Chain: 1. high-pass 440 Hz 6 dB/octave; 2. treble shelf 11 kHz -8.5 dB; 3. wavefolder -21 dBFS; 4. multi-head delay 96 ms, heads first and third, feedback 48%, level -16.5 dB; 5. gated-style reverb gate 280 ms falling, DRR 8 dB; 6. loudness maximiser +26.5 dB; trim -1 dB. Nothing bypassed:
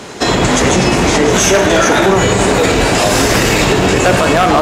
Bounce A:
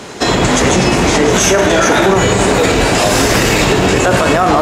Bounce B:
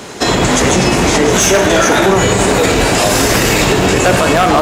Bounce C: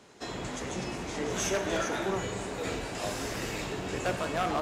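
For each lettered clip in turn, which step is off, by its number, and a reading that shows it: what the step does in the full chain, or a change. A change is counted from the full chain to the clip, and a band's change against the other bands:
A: 3, distortion -13 dB; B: 2, 8 kHz band +1.5 dB; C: 6, crest factor change +5.5 dB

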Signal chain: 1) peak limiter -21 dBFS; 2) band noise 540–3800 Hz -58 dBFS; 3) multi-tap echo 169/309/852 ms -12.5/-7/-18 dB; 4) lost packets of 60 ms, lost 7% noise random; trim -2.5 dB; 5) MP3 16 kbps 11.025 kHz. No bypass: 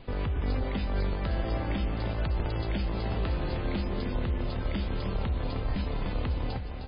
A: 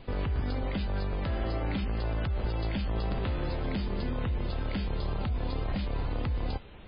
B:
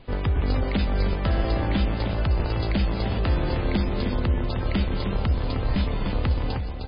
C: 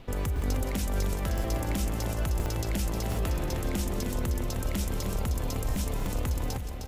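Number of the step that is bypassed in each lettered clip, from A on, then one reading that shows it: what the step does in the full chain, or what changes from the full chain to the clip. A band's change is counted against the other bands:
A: 3, loudness change -1.0 LU; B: 1, mean gain reduction 5.5 dB; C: 5, 4 kHz band +1.5 dB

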